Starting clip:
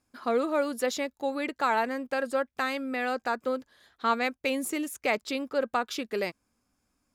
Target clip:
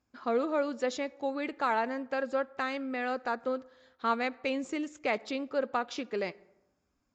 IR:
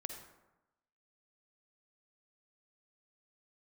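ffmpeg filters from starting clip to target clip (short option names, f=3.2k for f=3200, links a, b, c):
-filter_complex "[0:a]highshelf=f=2.4k:g=-4.5,asplit=2[a][b];[1:a]atrim=start_sample=2205,highshelf=f=8.7k:g=-11.5[c];[b][c]afir=irnorm=-1:irlink=0,volume=-13.5dB[d];[a][d]amix=inputs=2:normalize=0,volume=-3.5dB" -ar 16000 -c:a libvorbis -b:a 64k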